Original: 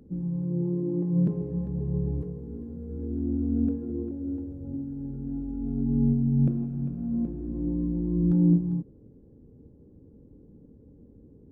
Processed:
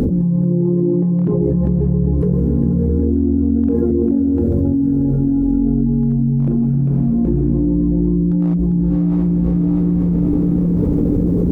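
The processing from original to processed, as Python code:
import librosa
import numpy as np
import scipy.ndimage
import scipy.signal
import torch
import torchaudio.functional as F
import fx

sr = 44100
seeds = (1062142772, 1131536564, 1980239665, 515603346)

p1 = fx.dereverb_blind(x, sr, rt60_s=0.61)
p2 = fx.hum_notches(p1, sr, base_hz=50, count=4)
p3 = fx.rider(p2, sr, range_db=3, speed_s=2.0)
p4 = p2 + (p3 * 10.0 ** (1.0 / 20.0))
p5 = np.clip(p4, -10.0 ** (-10.5 / 20.0), 10.0 ** (-10.5 / 20.0))
p6 = fx.air_absorb(p5, sr, metres=140.0, at=(0.81, 1.4))
p7 = p6 + fx.echo_diffused(p6, sr, ms=602, feedback_pct=46, wet_db=-12.0, dry=0)
p8 = fx.env_flatten(p7, sr, amount_pct=100)
y = p8 * 10.0 ** (-2.0 / 20.0)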